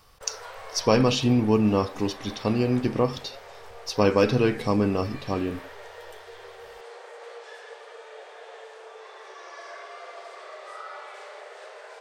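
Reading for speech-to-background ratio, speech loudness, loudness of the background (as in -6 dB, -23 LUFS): 18.5 dB, -24.5 LUFS, -43.0 LUFS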